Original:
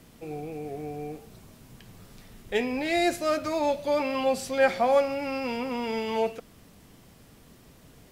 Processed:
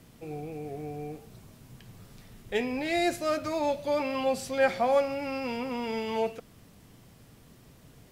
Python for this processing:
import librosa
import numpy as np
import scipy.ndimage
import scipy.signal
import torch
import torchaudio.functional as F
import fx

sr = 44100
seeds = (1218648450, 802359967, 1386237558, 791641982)

y = fx.peak_eq(x, sr, hz=120.0, db=5.0, octaves=0.76)
y = y * librosa.db_to_amplitude(-2.5)